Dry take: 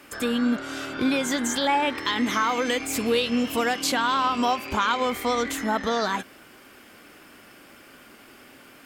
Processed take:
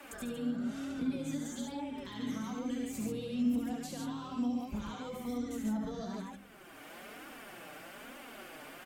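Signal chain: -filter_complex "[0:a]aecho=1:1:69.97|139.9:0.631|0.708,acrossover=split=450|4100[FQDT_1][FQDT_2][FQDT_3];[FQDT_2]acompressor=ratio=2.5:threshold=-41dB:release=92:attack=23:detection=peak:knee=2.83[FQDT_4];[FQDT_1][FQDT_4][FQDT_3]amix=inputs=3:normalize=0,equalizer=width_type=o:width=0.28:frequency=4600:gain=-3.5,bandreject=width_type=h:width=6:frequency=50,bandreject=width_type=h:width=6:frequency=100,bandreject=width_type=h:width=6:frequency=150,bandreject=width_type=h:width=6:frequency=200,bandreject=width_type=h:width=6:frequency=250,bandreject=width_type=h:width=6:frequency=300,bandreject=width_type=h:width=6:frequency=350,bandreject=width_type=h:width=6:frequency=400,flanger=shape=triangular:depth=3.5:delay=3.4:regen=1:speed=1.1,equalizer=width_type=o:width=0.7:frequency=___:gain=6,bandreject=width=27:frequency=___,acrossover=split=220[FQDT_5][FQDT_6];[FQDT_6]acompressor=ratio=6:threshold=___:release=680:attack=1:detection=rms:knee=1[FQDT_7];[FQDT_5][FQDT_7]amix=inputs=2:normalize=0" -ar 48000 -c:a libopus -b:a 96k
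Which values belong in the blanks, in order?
710, 5200, -40dB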